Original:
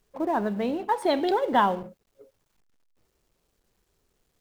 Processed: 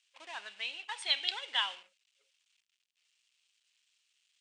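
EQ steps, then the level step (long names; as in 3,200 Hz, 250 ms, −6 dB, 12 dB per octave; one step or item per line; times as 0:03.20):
high-pass with resonance 2,800 Hz, resonance Q 2.9
Butterworth low-pass 9,200 Hz 72 dB per octave
0.0 dB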